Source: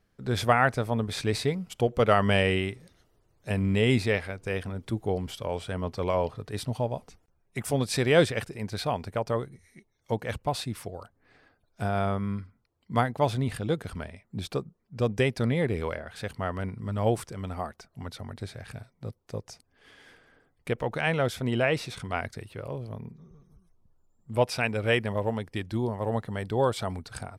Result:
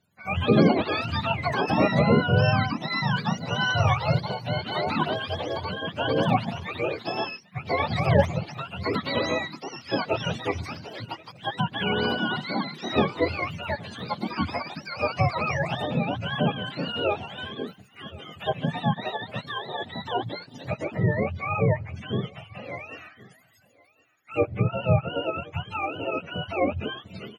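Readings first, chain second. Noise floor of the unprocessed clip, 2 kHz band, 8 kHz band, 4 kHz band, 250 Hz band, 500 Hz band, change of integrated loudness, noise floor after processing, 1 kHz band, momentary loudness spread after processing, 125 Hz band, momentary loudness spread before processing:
-71 dBFS, +3.5 dB, -7.5 dB, +5.5 dB, +3.5 dB, +1.0 dB, +2.0 dB, -56 dBFS, +4.0 dB, 13 LU, +3.0 dB, 16 LU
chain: spectrum mirrored in octaves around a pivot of 540 Hz; treble ducked by the level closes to 2000 Hz, closed at -21 dBFS; on a send: echo 1.069 s -23 dB; on the sum: echoes that change speed 0.211 s, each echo +5 st, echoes 2; gain +2 dB

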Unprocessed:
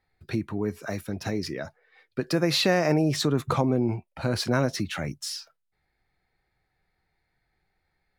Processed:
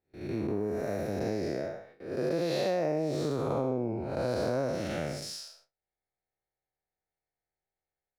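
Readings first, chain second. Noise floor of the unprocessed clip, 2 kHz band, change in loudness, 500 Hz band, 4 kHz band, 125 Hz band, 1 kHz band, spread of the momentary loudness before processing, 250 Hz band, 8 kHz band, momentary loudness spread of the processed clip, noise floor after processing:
-77 dBFS, -10.0 dB, -5.5 dB, -1.5 dB, -12.0 dB, -8.0 dB, -5.5 dB, 13 LU, -6.5 dB, -10.0 dB, 9 LU, under -85 dBFS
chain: time blur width 0.256 s; gate with hold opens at -46 dBFS; bell 560 Hz +12.5 dB 1.3 oct; compressor 6:1, threshold -27 dBFS, peak gain reduction 13 dB

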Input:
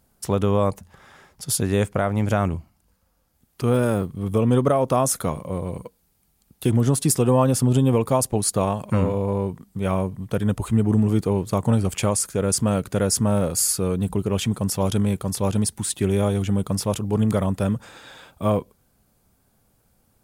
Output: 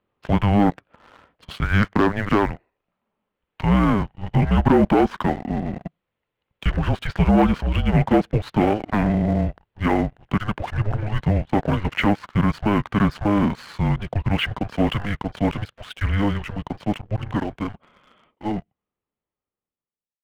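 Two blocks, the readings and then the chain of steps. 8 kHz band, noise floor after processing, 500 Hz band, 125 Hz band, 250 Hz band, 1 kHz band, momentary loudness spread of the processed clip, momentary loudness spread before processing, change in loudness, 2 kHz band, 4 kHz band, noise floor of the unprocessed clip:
under -25 dB, under -85 dBFS, -3.0 dB, -0.5 dB, +2.0 dB, +3.5 dB, 11 LU, 8 LU, 0.0 dB, +8.5 dB, -0.5 dB, -66 dBFS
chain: ending faded out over 5.39 s; dynamic EQ 1900 Hz, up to +8 dB, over -51 dBFS, Q 3.2; mistuned SSB -310 Hz 350–3400 Hz; sample leveller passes 2

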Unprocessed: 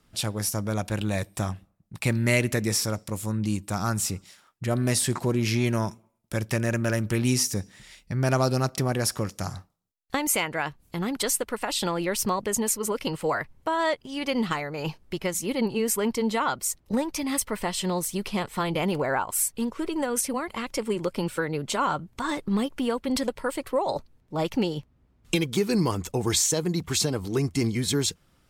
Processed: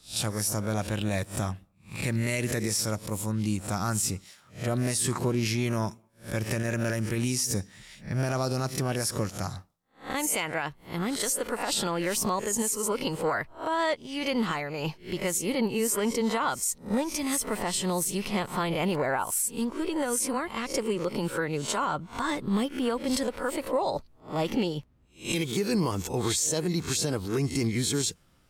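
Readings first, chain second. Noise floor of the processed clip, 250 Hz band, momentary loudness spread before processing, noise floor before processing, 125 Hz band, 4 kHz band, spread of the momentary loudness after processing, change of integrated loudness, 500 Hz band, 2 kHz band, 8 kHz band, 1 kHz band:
-59 dBFS, -2.0 dB, 8 LU, -64 dBFS, -2.5 dB, -2.0 dB, 7 LU, -2.0 dB, -2.0 dB, -2.0 dB, -1.0 dB, -1.5 dB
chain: spectral swells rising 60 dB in 0.30 s; dynamic EQ 8300 Hz, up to +5 dB, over -37 dBFS, Q 0.94; limiter -16.5 dBFS, peak gain reduction 10 dB; gain -1.5 dB

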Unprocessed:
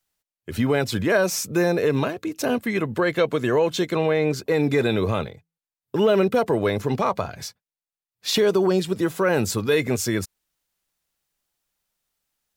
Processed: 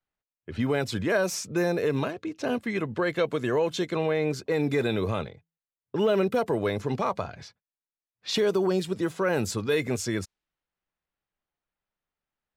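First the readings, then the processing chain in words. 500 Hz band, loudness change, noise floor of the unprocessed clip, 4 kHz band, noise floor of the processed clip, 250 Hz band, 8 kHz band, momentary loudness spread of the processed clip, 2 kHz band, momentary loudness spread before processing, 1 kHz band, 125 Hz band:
-5.0 dB, -5.0 dB, under -85 dBFS, -5.5 dB, under -85 dBFS, -5.0 dB, -6.5 dB, 8 LU, -5.0 dB, 9 LU, -5.0 dB, -5.0 dB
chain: low-pass opened by the level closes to 2200 Hz, open at -17 dBFS; gain -5 dB

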